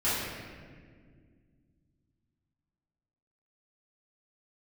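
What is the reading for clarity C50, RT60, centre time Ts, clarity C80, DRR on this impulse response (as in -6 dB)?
-2.5 dB, 1.9 s, 0.116 s, 0.5 dB, -13.5 dB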